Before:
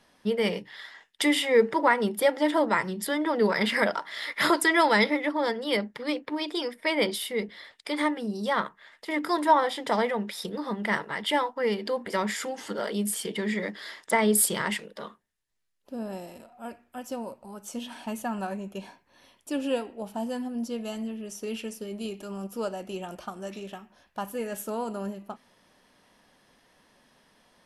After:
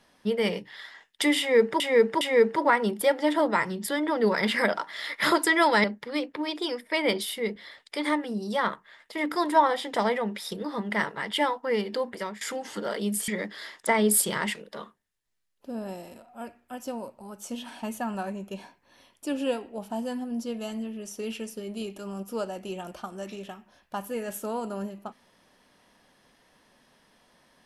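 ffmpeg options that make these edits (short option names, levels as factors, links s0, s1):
-filter_complex "[0:a]asplit=6[s0][s1][s2][s3][s4][s5];[s0]atrim=end=1.802[s6];[s1]atrim=start=1.388:end=1.802[s7];[s2]atrim=start=1.388:end=5.022[s8];[s3]atrim=start=5.768:end=12.34,asetpts=PTS-STARTPTS,afade=t=out:st=6.202:d=0.37:silence=0.0944061[s9];[s4]atrim=start=12.34:end=13.212,asetpts=PTS-STARTPTS,afade=t=in:d=0.004:c=hsin:silence=0.0944061[s10];[s5]atrim=start=13.518[s11];[s6][s7]acrossfade=d=0.004:c1=hsin:c2=hsin[s12];[s12][s8]acrossfade=d=0.004:c1=hsin:c2=hsin[s13];[s9][s10]concat=n=2:v=0:a=1[s14];[s13][s14]acrossfade=d=0.004:c1=hsin:c2=hsin[s15];[s15][s11]acrossfade=d=0.004:c1=hsin:c2=hsin"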